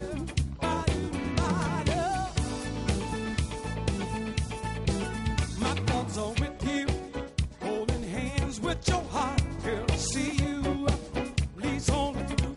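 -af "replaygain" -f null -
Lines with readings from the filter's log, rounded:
track_gain = +12.4 dB
track_peak = 0.233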